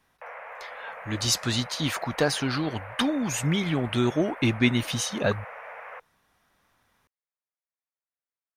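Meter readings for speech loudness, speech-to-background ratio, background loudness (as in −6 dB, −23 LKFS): −26.5 LKFS, 14.5 dB, −41.0 LKFS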